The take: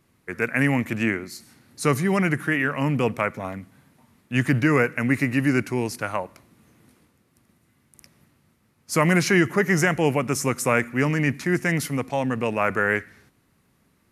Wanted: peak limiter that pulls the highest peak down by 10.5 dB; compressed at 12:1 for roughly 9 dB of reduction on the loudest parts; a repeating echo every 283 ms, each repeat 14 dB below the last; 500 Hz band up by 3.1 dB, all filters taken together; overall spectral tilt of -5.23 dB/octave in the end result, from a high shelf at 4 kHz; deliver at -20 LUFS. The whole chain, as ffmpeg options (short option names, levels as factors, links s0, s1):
-af "equalizer=f=500:t=o:g=4,highshelf=f=4000:g=-7,acompressor=threshold=0.0794:ratio=12,alimiter=limit=0.0891:level=0:latency=1,aecho=1:1:283|566:0.2|0.0399,volume=3.98"